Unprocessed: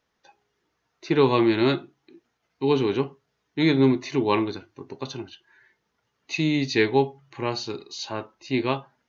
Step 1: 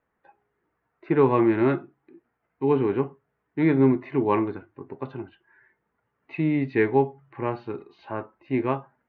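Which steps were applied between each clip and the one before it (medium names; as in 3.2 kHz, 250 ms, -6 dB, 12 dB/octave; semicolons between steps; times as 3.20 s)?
low-pass 2 kHz 24 dB/octave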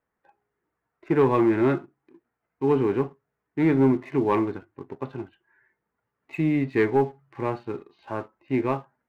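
waveshaping leveller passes 1; trim -3 dB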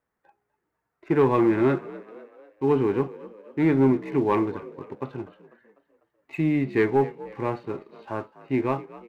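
frequency-shifting echo 248 ms, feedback 49%, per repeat +50 Hz, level -18.5 dB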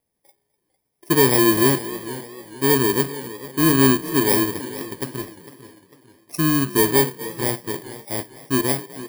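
bit-reversed sample order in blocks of 32 samples; modulated delay 451 ms, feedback 40%, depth 92 cents, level -15.5 dB; trim +4 dB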